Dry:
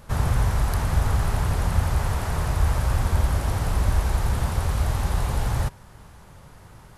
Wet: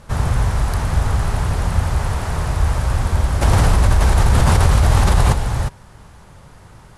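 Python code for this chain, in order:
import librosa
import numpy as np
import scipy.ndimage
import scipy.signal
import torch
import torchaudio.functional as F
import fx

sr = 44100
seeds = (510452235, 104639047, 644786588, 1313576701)

y = scipy.signal.sosfilt(scipy.signal.butter(4, 11000.0, 'lowpass', fs=sr, output='sos'), x)
y = fx.env_flatten(y, sr, amount_pct=100, at=(3.41, 5.32), fade=0.02)
y = y * 10.0 ** (4.0 / 20.0)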